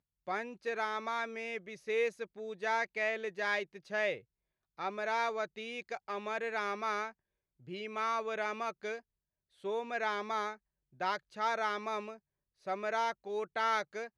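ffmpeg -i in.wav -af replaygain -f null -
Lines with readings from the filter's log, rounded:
track_gain = +16.5 dB
track_peak = 0.071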